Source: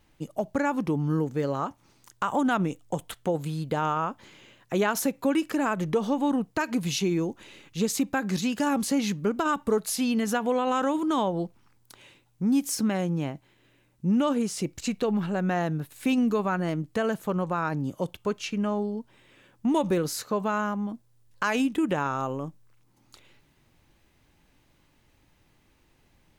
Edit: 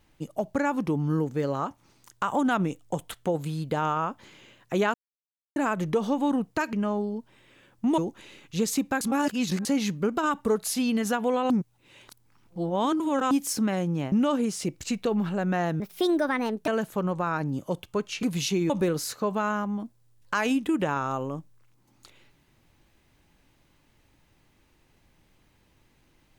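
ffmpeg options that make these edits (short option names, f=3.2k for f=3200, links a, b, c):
-filter_complex "[0:a]asplit=14[a][b][c][d][e][f][g][h][i][j][k][l][m][n];[a]atrim=end=4.94,asetpts=PTS-STARTPTS,afade=t=out:st=4.936:d=0.004:c=hsin[o];[b]atrim=start=4.94:end=5.56,asetpts=PTS-STARTPTS,volume=0[p];[c]atrim=start=5.56:end=6.732,asetpts=PTS-STARTPTS,afade=t=in:d=0.004:c=hsin[q];[d]atrim=start=18.538:end=19.792[r];[e]atrim=start=7.198:end=8.232[s];[f]atrim=start=8.228:end=8.872,asetpts=PTS-STARTPTS,areverse[t];[g]atrim=start=8.868:end=10.722[u];[h]atrim=start=10.718:end=12.532,asetpts=PTS-STARTPTS,areverse[v];[i]atrim=start=12.528:end=13.342[w];[j]atrim=start=14.088:end=15.774[x];[k]atrim=start=15.77:end=16.99,asetpts=PTS-STARTPTS,asetrate=61299,aresample=44100,atrim=end_sample=38706,asetpts=PTS-STARTPTS[y];[l]atrim=start=16.986:end=18.542[z];[m]atrim=start=6.728:end=7.202[aa];[n]atrim=start=19.788[ab];[o][p][q]concat=n=3:v=0:a=1[ac];[ac][r]acrossfade=d=0.004:c1=hsin:c2=hsin[ad];[ad][s]acrossfade=d=0.004:c1=hsin:c2=hsin[ae];[ae][t]acrossfade=d=0.004:c1=hsin:c2=hsin[af];[af][u]acrossfade=d=0.004:c1=hsin:c2=hsin[ag];[ag][v]acrossfade=d=0.004:c1=hsin:c2=hsin[ah];[ah][w]acrossfade=d=0.004:c1=hsin:c2=hsin[ai];[ai][x]acrossfade=d=0.004:c1=hsin:c2=hsin[aj];[aj][y]acrossfade=d=0.004:c1=hsin:c2=hsin[ak];[ak][z]acrossfade=d=0.004:c1=hsin:c2=hsin[al];[al][aa]acrossfade=d=0.004:c1=hsin:c2=hsin[am];[am][ab]acrossfade=d=0.004:c1=hsin:c2=hsin"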